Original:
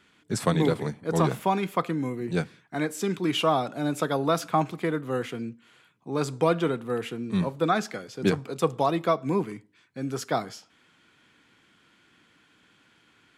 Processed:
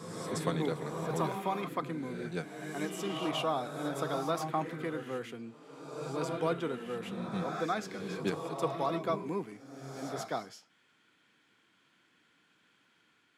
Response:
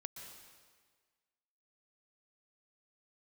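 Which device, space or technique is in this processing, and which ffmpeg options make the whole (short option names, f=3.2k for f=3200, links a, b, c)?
reverse reverb: -filter_complex "[0:a]highpass=f=180:p=1,areverse[a];[1:a]atrim=start_sample=2205[b];[a][b]afir=irnorm=-1:irlink=0,areverse,volume=-3.5dB"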